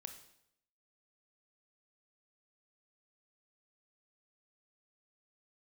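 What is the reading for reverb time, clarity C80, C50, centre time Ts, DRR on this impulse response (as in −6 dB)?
0.75 s, 12.0 dB, 9.0 dB, 14 ms, 6.5 dB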